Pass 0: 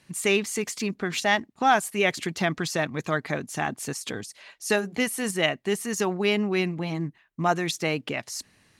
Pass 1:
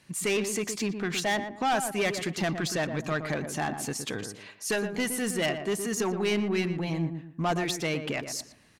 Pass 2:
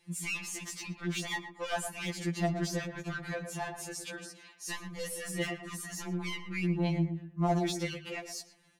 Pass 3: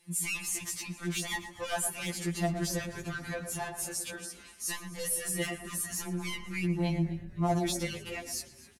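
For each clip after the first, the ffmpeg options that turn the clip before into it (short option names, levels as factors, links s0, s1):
-filter_complex "[0:a]asoftclip=type=tanh:threshold=0.0794,asplit=2[s0][s1];[s1]adelay=117,lowpass=f=1300:p=1,volume=0.447,asplit=2[s2][s3];[s3]adelay=117,lowpass=f=1300:p=1,volume=0.34,asplit=2[s4][s5];[s5]adelay=117,lowpass=f=1300:p=1,volume=0.34,asplit=2[s6][s7];[s7]adelay=117,lowpass=f=1300:p=1,volume=0.34[s8];[s0][s2][s4][s6][s8]amix=inputs=5:normalize=0"
-af "afftfilt=real='re*2.83*eq(mod(b,8),0)':imag='im*2.83*eq(mod(b,8),0)':win_size=2048:overlap=0.75,volume=0.631"
-filter_complex "[0:a]equalizer=f=11000:t=o:w=0.93:g=11.5,asplit=5[s0][s1][s2][s3][s4];[s1]adelay=256,afreqshift=-140,volume=0.112[s5];[s2]adelay=512,afreqshift=-280,volume=0.0596[s6];[s3]adelay=768,afreqshift=-420,volume=0.0316[s7];[s4]adelay=1024,afreqshift=-560,volume=0.0168[s8];[s0][s5][s6][s7][s8]amix=inputs=5:normalize=0"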